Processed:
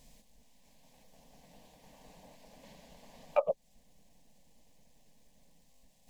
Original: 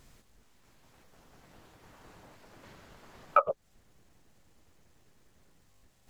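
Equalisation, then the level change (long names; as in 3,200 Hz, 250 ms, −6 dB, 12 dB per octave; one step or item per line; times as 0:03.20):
phaser with its sweep stopped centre 360 Hz, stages 6
+1.5 dB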